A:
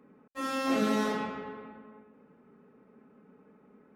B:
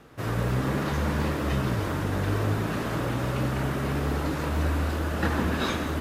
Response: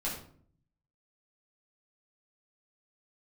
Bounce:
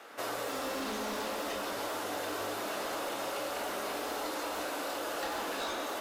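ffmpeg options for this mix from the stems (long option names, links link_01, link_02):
-filter_complex "[0:a]adelay=100,volume=-0.5dB[link_01];[1:a]highpass=540,volume=3dB,asplit=2[link_02][link_03];[link_03]volume=-6dB[link_04];[2:a]atrim=start_sample=2205[link_05];[link_04][link_05]afir=irnorm=-1:irlink=0[link_06];[link_01][link_02][link_06]amix=inputs=3:normalize=0,asoftclip=type=hard:threshold=-22dB,equalizer=frequency=150:width=2:gain=-13,acrossover=split=1100|2900[link_07][link_08][link_09];[link_07]acompressor=threshold=-36dB:ratio=4[link_10];[link_08]acompressor=threshold=-51dB:ratio=4[link_11];[link_09]acompressor=threshold=-42dB:ratio=4[link_12];[link_10][link_11][link_12]amix=inputs=3:normalize=0"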